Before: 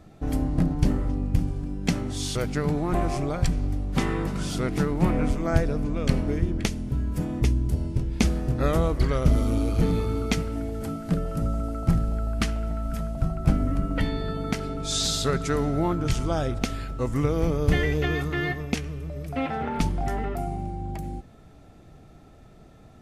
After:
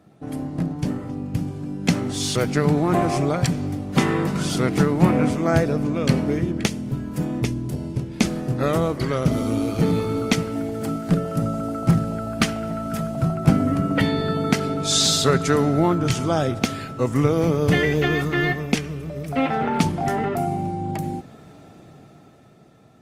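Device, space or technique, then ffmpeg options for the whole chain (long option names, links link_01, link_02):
video call: -af "highpass=frequency=110:width=0.5412,highpass=frequency=110:width=1.3066,dynaudnorm=framelen=250:gausssize=13:maxgain=13dB,volume=-1dB" -ar 48000 -c:a libopus -b:a 32k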